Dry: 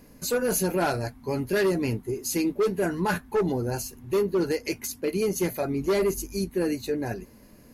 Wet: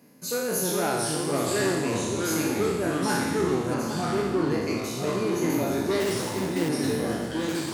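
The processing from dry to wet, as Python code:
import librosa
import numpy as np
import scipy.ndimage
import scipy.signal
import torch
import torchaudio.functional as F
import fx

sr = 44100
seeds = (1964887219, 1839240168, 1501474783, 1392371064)

y = fx.spec_trails(x, sr, decay_s=1.25)
y = fx.sample_hold(y, sr, seeds[0], rate_hz=2400.0, jitter_pct=20, at=(6.0, 6.69))
y = scipy.signal.sosfilt(scipy.signal.butter(4, 130.0, 'highpass', fs=sr, output='sos'), y)
y = y + 10.0 ** (-12.0 / 20.0) * np.pad(y, (int(823 * sr / 1000.0), 0))[:len(y)]
y = fx.echo_pitch(y, sr, ms=351, semitones=-3, count=3, db_per_echo=-3.0)
y = fx.high_shelf(y, sr, hz=7300.0, db=-10.5, at=(3.74, 5.5))
y = y * librosa.db_to_amplitude(-5.0)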